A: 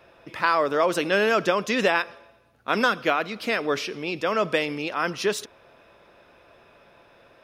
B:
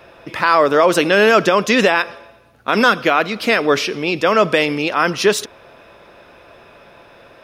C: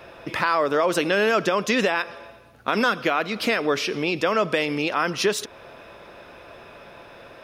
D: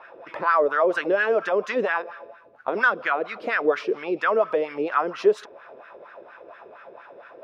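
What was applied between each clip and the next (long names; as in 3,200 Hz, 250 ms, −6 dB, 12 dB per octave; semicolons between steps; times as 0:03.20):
boost into a limiter +11 dB; level −1 dB
downward compressor 2 to 1, threshold −24 dBFS, peak gain reduction 9 dB
LFO wah 4.3 Hz 400–1,600 Hz, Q 3.2; level +6.5 dB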